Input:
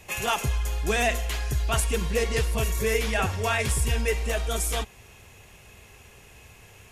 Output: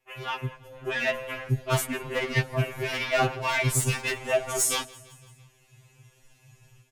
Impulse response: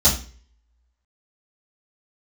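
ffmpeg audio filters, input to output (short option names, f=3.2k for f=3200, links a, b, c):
-af "afwtdn=0.0158,asetnsamples=n=441:p=0,asendcmd='3.75 equalizer g 5',equalizer=f=6.7k:w=0.85:g=-5.5,dynaudnorm=f=670:g=3:m=12dB,aeval=exprs='0.422*(abs(mod(val(0)/0.422+3,4)-2)-1)':c=same,aecho=1:1:168|336|504|672:0.075|0.0435|0.0252|0.0146,afftfilt=real='re*2.45*eq(mod(b,6),0)':imag='im*2.45*eq(mod(b,6),0)':win_size=2048:overlap=0.75,volume=-4dB"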